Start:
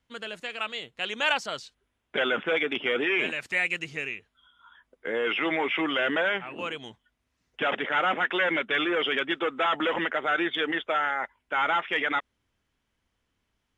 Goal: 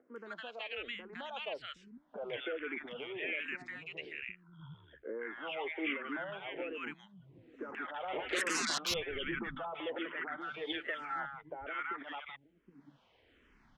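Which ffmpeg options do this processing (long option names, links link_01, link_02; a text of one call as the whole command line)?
ffmpeg -i in.wav -filter_complex "[0:a]asettb=1/sr,asplit=3[link_01][link_02][link_03];[link_01]atrim=end=10.254[link_04];[link_02]atrim=start=10.25:end=11.04,asetpts=PTS-STARTPTS,afade=type=in:duration=0.004:curve=qsin,afade=type=out:start_time=0.786:duration=0.004:curve=qsin,aeval=exprs='val(0)+0.5*0.0106*sgn(val(0))':channel_layout=same[link_05];[link_03]atrim=start=11.036[link_06];[link_04][link_05]acrossfade=duration=0.004:curve1=hsin:curve2=qsin[link_07];[link_07][link_06]acrossfade=duration=0.004:curve1=qsin:curve2=hsin,lowpass=2700,acompressor=threshold=-28dB:ratio=6,alimiter=level_in=2dB:limit=-24dB:level=0:latency=1:release=105,volume=-2dB,acompressor=mode=upward:threshold=-45dB:ratio=2.5,asettb=1/sr,asplit=3[link_08][link_09][link_10];[link_08]atrim=end=3.964[link_11];[link_09]atrim=start=3.96:end=5.09,asetpts=PTS-STARTPTS,afade=type=in:duration=0.004:curve=qsin,afade=type=out:start_time=1.126:duration=0.004:curve=qsin,aeval=exprs='val(0)*sin(2*PI*37*n/s)':channel_layout=same[link_12];[link_10]atrim=start=5.086[link_13];[link_11][link_12]acrossfade=duration=0.004:curve1=hsin:curve2=qsin[link_14];[link_14][link_13]acrossfade=duration=0.004:curve1=qsin:curve2=hsin,asettb=1/sr,asplit=3[link_15][link_16][link_17];[link_15]atrim=end=8.134[link_18];[link_16]atrim=start=8.13:end=8.78,asetpts=PTS-STARTPTS,afade=type=in:duration=0.004:curve=qsin,afade=type=out:start_time=0.646:duration=0.004:curve=qsin,aeval=exprs='0.0501*sin(PI/2*3.55*val(0)/0.0501)':channel_layout=same[link_19];[link_17]atrim=start=8.776[link_20];[link_18][link_19]acrossfade=duration=0.004:curve1=hsin:curve2=qsin[link_21];[link_21][link_20]acrossfade=duration=0.004:curve1=qsin:curve2=hsin,acrossover=split=220|1100[link_22][link_23][link_24];[link_24]adelay=160[link_25];[link_22]adelay=770[link_26];[link_26][link_23][link_25]amix=inputs=3:normalize=0,asplit=2[link_27][link_28];[link_28]afreqshift=-1.2[link_29];[link_27][link_29]amix=inputs=2:normalize=1" out.wav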